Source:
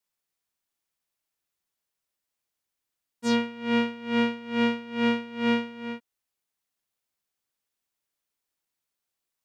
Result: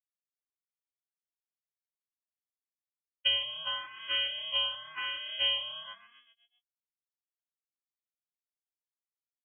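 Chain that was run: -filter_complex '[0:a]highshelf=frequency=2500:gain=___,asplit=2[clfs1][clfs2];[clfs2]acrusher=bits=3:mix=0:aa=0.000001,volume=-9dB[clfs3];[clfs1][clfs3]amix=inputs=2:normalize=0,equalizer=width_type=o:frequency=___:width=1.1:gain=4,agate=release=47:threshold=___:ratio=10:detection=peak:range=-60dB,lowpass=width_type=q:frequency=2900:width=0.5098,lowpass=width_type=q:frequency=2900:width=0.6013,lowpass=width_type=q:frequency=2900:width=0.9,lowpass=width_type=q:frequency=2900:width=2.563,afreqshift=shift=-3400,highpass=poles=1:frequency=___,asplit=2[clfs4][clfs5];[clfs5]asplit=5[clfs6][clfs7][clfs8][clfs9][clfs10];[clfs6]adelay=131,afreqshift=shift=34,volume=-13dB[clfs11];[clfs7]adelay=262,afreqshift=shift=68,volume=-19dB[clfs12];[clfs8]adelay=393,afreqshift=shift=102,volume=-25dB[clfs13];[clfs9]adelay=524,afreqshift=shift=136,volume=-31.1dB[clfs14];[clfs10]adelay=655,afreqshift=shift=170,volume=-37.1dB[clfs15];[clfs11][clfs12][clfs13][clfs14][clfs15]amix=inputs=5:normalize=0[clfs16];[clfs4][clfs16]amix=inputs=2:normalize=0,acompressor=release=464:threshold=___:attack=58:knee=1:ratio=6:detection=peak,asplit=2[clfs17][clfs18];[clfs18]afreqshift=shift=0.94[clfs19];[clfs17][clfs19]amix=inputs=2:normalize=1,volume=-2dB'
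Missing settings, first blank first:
4, 460, -32dB, 45, -27dB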